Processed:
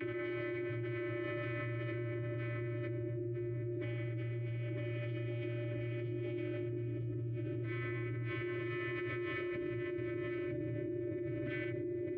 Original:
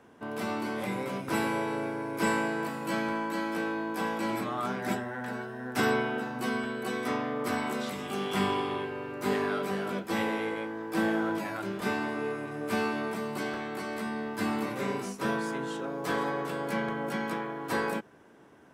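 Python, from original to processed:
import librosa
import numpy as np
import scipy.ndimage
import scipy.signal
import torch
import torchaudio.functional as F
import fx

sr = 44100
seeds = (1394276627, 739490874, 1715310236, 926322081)

y = fx.low_shelf(x, sr, hz=150.0, db=4.0)
y = y + 0.34 * np.pad(y, (int(7.2 * sr / 1000.0), 0))[:len(y)]
y = fx.dynamic_eq(y, sr, hz=930.0, q=0.71, threshold_db=-41.0, ratio=4.0, max_db=-4)
y = np.abs(y)
y = fx.vocoder(y, sr, bands=32, carrier='square', carrier_hz=118.0)
y = fx.filter_lfo_lowpass(y, sr, shape='square', hz=0.17, low_hz=400.0, high_hz=1600.0, q=0.99)
y = fx.vowel_filter(y, sr, vowel='i')
y = fx.stretch_vocoder_free(y, sr, factor=0.65)
y = fx.echo_feedback(y, sr, ms=956, feedback_pct=28, wet_db=-4)
y = fx.env_flatten(y, sr, amount_pct=100)
y = F.gain(torch.from_numpy(y), 13.5).numpy()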